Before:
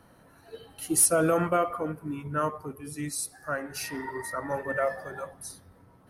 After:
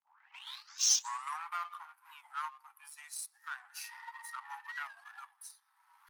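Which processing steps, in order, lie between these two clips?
turntable start at the beginning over 1.49 s
in parallel at −0.5 dB: downward compressor, threshold −35 dBFS, peak gain reduction 17.5 dB
on the sum: power curve on the samples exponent 1.4
Butterworth high-pass 820 Hz 96 dB per octave
upward compression, threshold −41 dBFS
wow of a warped record 45 rpm, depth 160 cents
level −6.5 dB

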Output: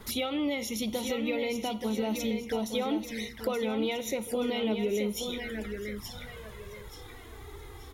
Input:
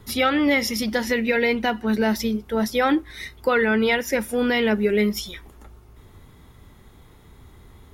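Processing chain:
low-shelf EQ 290 Hz −6.5 dB
four-comb reverb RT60 0.48 s, combs from 32 ms, DRR 19.5 dB
in parallel at +3 dB: brickwall limiter −17 dBFS, peak gain reduction 7 dB
on the sum: downward compressor 2 to 1, threshold −37 dBFS, peak gain reduction 13.5 dB
on a send: repeating echo 878 ms, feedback 38%, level −7 dB
on the sum: flanger swept by the level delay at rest 6.3 ms, full sweep at −29 dBFS

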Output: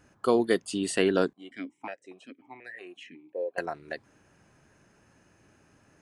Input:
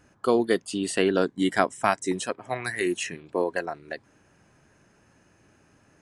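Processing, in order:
0:01.33–0:03.58: formant filter that steps through the vowels 5.5 Hz
level −1.5 dB

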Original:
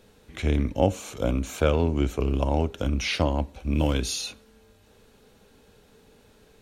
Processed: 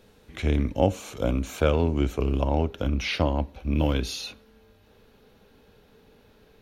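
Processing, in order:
parametric band 8,000 Hz −4 dB 0.73 octaves, from 0:02.42 −13 dB

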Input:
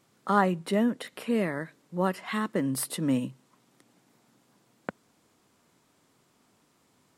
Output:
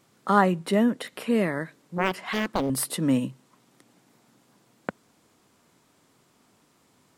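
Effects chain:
0:01.98–0:02.70: highs frequency-modulated by the lows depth 0.98 ms
level +3.5 dB

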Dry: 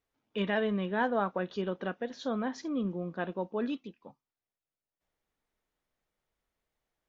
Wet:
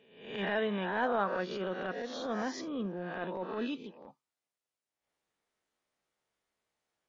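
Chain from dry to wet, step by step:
peak hold with a rise ahead of every peak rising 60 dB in 0.65 s
high-pass filter 250 Hz 6 dB per octave
transient designer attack −12 dB, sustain 0 dB
MP3 40 kbit/s 48,000 Hz

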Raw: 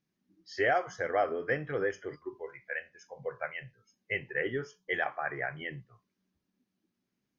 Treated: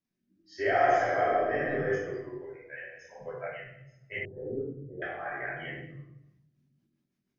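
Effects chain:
rectangular room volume 330 cubic metres, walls mixed, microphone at 2.8 metres
rotating-speaker cabinet horn 0.85 Hz, later 6.3 Hz, at 0:05.98
0:00.75–0:01.69: thrown reverb, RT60 1.6 s, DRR −3 dB
0:04.25–0:05.02: Bessel low-pass filter 500 Hz, order 8
level −7 dB

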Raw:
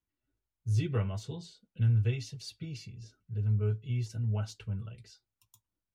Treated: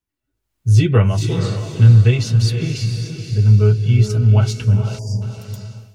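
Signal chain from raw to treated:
feedback delay with all-pass diffusion 486 ms, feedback 43%, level −7 dB
automatic gain control gain up to 14 dB
time-frequency box erased 0:04.99–0:05.22, 1,000–4,600 Hz
level +3.5 dB

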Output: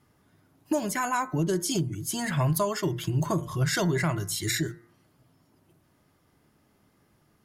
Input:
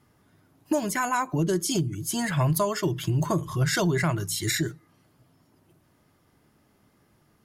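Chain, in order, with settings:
hum removal 116.6 Hz, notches 18
level −1.5 dB

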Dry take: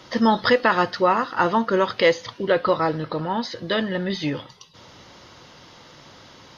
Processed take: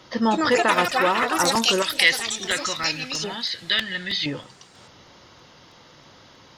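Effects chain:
0:01.82–0:04.26: octave-band graphic EQ 125/250/500/1,000/2,000/4,000 Hz −5/−7/−11/−8/+9/+11 dB
delay with pitch and tempo change per echo 228 ms, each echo +6 semitones, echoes 3
regular buffer underruns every 0.32 s, samples 128, repeat, from 0:00.91
level −3 dB

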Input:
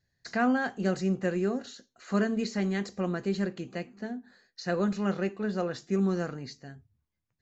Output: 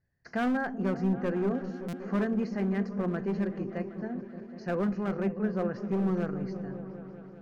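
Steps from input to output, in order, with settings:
moving average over 12 samples
gain into a clipping stage and back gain 24 dB
on a send: echo whose low-pass opens from repeat to repeat 192 ms, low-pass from 200 Hz, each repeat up 1 octave, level −6 dB
on the sum: buffer that repeats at 0:01.88, samples 256, times 8

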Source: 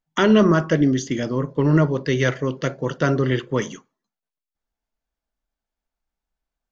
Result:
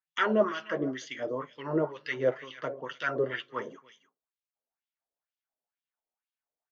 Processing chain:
flanger 0.76 Hz, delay 6.4 ms, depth 3.1 ms, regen −31%
single-tap delay 301 ms −18 dB
auto-filter band-pass sine 2.1 Hz 510–3,300 Hz
level +3 dB

